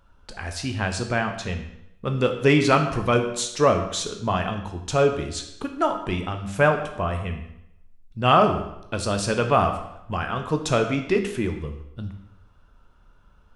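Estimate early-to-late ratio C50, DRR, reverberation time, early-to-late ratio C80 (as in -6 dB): 8.5 dB, 5.0 dB, 0.80 s, 10.5 dB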